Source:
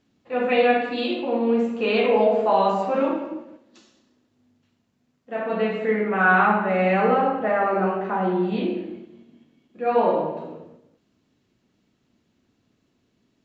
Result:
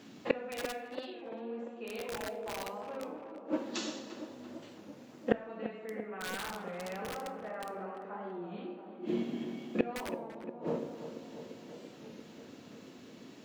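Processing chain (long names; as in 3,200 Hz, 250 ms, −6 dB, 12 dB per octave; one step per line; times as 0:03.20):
high-pass filter 170 Hz 12 dB per octave
in parallel at 0 dB: brickwall limiter −17 dBFS, peak gain reduction 11 dB
on the sum: wrap-around overflow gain 8 dB
gate with flip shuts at −23 dBFS, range −35 dB
tape delay 341 ms, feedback 80%, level −9 dB, low-pass 1,600 Hz
on a send at −16 dB: convolution reverb RT60 0.55 s, pre-delay 14 ms
on the sum: wow of a warped record 33 1/3 rpm, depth 100 cents
level +10 dB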